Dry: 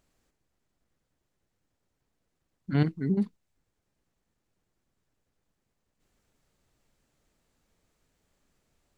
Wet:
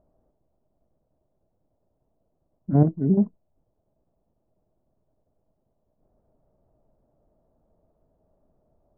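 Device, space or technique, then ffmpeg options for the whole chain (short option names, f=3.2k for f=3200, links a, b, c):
under water: -af "lowpass=f=890:w=0.5412,lowpass=f=890:w=1.3066,equalizer=f=630:t=o:w=0.26:g=11,volume=6.5dB"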